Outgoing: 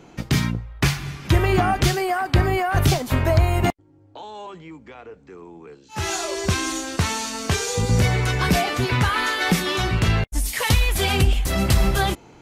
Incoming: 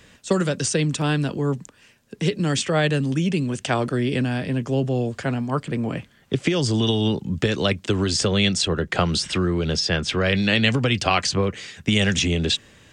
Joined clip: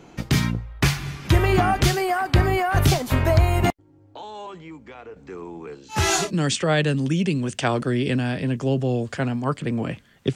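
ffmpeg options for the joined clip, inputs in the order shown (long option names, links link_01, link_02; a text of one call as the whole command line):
ffmpeg -i cue0.wav -i cue1.wav -filter_complex "[0:a]asettb=1/sr,asplit=3[link_01][link_02][link_03];[link_01]atrim=end=5.164[link_04];[link_02]atrim=start=5.16:end=6.31,asetpts=PTS-STARTPTS,afade=type=in:duration=0.004:curve=qsin,afade=type=out:start_time=1.146:duration=0.004:curve=qsin,acontrast=32[link_05];[link_03]atrim=start=6.306[link_06];[link_04][link_05]acrossfade=duration=0.004:curve1=hsin:curve2=qsin[link_07];[link_07][link_06]acrossfade=duration=0.004:curve1=qsin:curve2=hsin,apad=whole_dur=10.35,atrim=end=10.35,atrim=end=6.31,asetpts=PTS-STARTPTS[link_08];[1:a]atrim=start=2.23:end=6.41,asetpts=PTS-STARTPTS[link_09];[link_08][link_09]acrossfade=duration=0.14:curve1=tri:curve2=tri" out.wav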